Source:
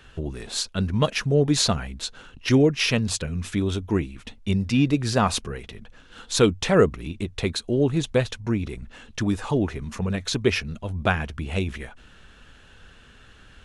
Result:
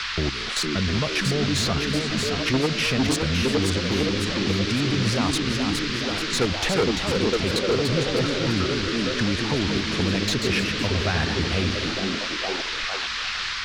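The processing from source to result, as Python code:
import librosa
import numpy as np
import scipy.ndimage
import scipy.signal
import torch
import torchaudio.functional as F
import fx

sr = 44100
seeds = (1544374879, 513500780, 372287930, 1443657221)

y = fx.high_shelf(x, sr, hz=6500.0, db=-6.5)
y = fx.level_steps(y, sr, step_db=15)
y = fx.echo_stepped(y, sr, ms=456, hz=260.0, octaves=0.7, feedback_pct=70, wet_db=-1)
y = 10.0 ** (-24.5 / 20.0) * np.tanh(y / 10.0 ** (-24.5 / 20.0))
y = fx.dmg_noise_band(y, sr, seeds[0], low_hz=1100.0, high_hz=4900.0, level_db=-40.0)
y = fx.echo_pitch(y, sr, ms=715, semitones=1, count=3, db_per_echo=-6.0)
y = fx.band_squash(y, sr, depth_pct=40)
y = y * librosa.db_to_amplitude(7.5)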